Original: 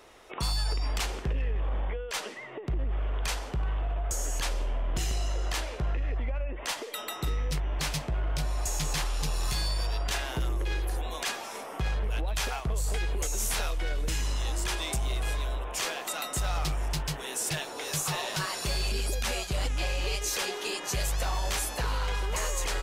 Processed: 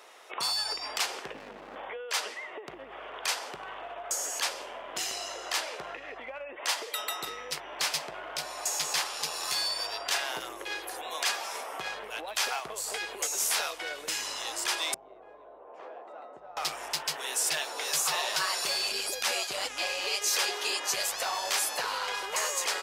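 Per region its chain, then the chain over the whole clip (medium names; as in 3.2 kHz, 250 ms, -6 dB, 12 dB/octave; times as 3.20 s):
1.34–1.76 s: peaking EQ 230 Hz +13.5 dB 0.78 oct + band-stop 3.3 kHz, Q 5.9 + sliding maximum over 65 samples
14.94–16.57 s: Chebyshev low-pass 520 Hz + bass shelf 410 Hz -5.5 dB + compression 2:1, threshold -40 dBFS
whole clip: high-pass 570 Hz 12 dB/octave; dynamic bell 4.9 kHz, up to +4 dB, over -52 dBFS, Q 4.4; trim +3 dB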